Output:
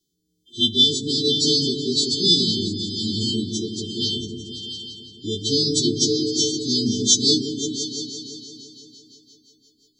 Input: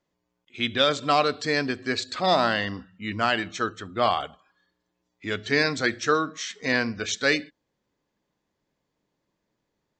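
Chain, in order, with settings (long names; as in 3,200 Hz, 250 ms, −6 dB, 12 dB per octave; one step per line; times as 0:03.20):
every partial snapped to a pitch grid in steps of 2 semitones
linear-phase brick-wall band-stop 450–3,100 Hz
on a send: echo whose low-pass opens from repeat to repeat 170 ms, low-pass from 400 Hz, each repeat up 2 octaves, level −3 dB
on the sum: rotating-speaker cabinet horn 1.2 Hz, later 5.5 Hz, at 0:05.18
level +7 dB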